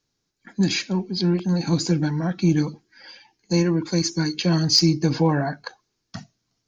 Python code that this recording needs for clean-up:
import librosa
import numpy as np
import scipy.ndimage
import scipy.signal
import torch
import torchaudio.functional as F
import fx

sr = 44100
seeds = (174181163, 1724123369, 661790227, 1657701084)

y = fx.fix_declip(x, sr, threshold_db=-7.5)